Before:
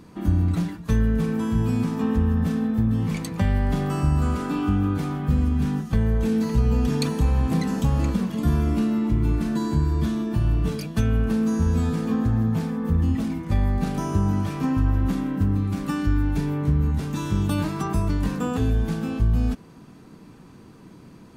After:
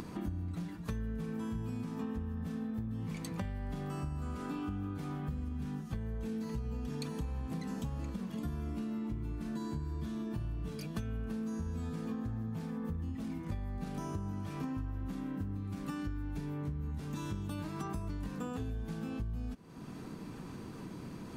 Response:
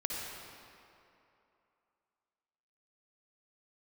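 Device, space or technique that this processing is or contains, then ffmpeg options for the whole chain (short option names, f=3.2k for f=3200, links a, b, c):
upward and downward compression: -af "acompressor=mode=upward:threshold=-37dB:ratio=2.5,acompressor=threshold=-35dB:ratio=6,volume=-1.5dB"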